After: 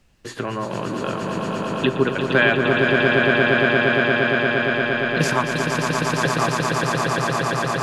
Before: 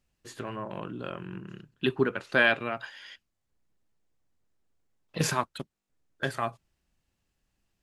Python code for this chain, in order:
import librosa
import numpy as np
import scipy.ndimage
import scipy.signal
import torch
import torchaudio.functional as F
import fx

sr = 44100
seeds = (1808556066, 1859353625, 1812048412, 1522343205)

y = fx.high_shelf(x, sr, hz=7800.0, db=-9.5)
y = fx.echo_swell(y, sr, ms=116, loudest=8, wet_db=-5.0)
y = fx.band_squash(y, sr, depth_pct=40)
y = y * 10.0 ** (6.0 / 20.0)